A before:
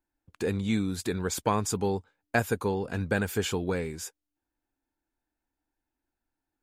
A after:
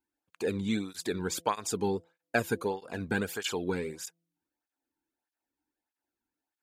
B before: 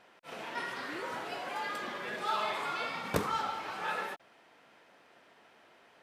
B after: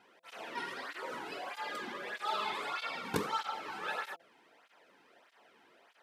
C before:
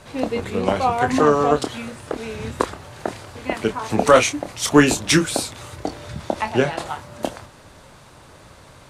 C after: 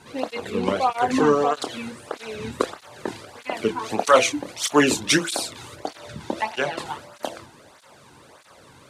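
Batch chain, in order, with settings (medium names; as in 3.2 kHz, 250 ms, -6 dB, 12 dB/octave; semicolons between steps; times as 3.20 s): de-hum 167.8 Hz, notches 4; dynamic bell 3.8 kHz, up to +3 dB, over -44 dBFS, Q 1.2; cancelling through-zero flanger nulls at 1.6 Hz, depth 1.8 ms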